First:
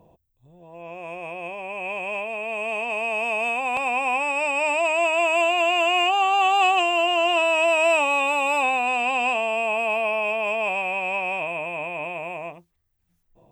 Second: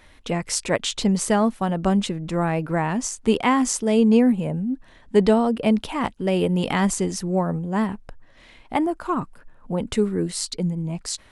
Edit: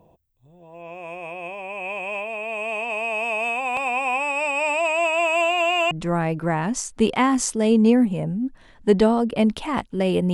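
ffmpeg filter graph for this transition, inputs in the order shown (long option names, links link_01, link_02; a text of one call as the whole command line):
ffmpeg -i cue0.wav -i cue1.wav -filter_complex "[0:a]apad=whole_dur=10.33,atrim=end=10.33,atrim=end=5.912[link_01];[1:a]atrim=start=2.178:end=6.6[link_02];[link_01][link_02]acrossfade=duration=0.004:curve1=hsin:curve2=hsin" out.wav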